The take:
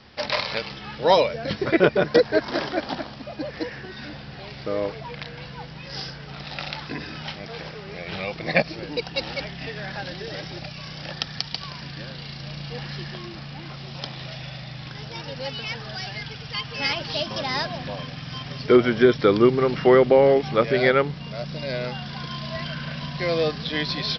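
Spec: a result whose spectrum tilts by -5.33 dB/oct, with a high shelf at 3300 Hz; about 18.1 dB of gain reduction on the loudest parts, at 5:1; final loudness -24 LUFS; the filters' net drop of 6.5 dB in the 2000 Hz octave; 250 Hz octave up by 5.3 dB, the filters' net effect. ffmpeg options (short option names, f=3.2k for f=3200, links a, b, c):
-af "equalizer=f=250:t=o:g=7.5,equalizer=f=2k:t=o:g=-6,highshelf=f=3.3k:g=-7.5,acompressor=threshold=-28dB:ratio=5,volume=9.5dB"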